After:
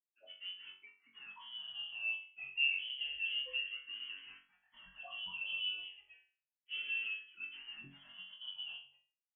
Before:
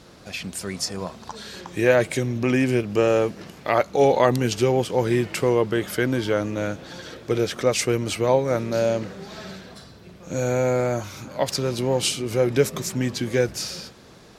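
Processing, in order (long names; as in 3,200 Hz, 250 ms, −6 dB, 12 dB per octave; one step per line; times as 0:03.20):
noise reduction from a noise print of the clip's start 14 dB
low-pass that shuts in the quiet parts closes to 1,000 Hz, open at −19 dBFS
downward compressor 2.5 to 1, threshold −22 dBFS, peak gain reduction 7 dB
brickwall limiter −17 dBFS, peak gain reduction 7.5 dB
spectral peaks only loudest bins 4
dead-zone distortion −45 dBFS
flutter between parallel walls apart 3.7 metres, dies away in 0.61 s
time stretch by phase vocoder 0.65×
voice inversion scrambler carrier 3,200 Hz
frequency shifter mixed with the dry sound −0.3 Hz
level −7.5 dB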